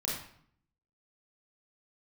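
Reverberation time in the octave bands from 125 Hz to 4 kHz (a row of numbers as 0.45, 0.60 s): 0.85, 0.80, 0.60, 0.60, 0.55, 0.50 s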